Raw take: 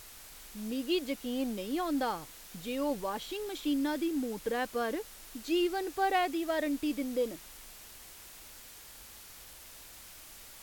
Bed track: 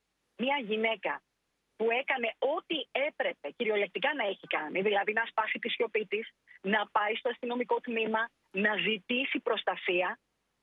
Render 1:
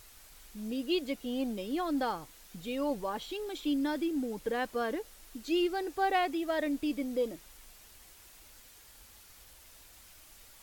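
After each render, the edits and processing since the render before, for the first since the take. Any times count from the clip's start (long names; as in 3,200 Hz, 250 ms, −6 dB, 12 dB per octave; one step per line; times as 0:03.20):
broadband denoise 6 dB, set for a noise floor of −51 dBFS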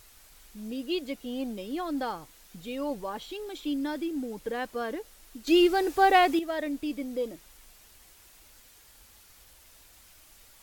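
0:05.47–0:06.39: clip gain +8.5 dB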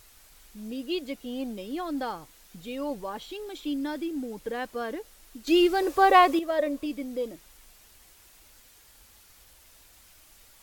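0:05.82–0:06.86: hollow resonant body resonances 560/1,100 Hz, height 14 dB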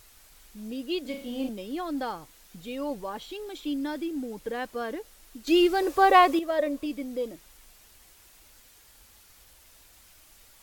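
0:01.01–0:01.49: flutter between parallel walls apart 6.5 metres, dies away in 0.45 s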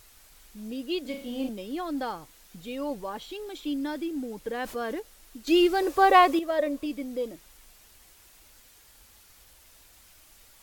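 0:04.60–0:05.00: envelope flattener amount 50%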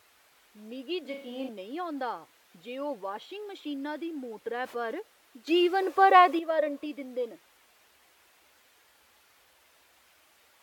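high-pass filter 62 Hz 24 dB per octave
bass and treble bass −14 dB, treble −11 dB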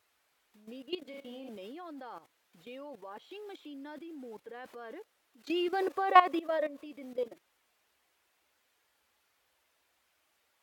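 output level in coarse steps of 15 dB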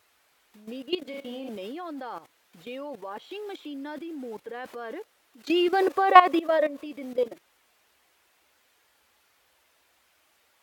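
level +8.5 dB
brickwall limiter −2 dBFS, peak gain reduction 2.5 dB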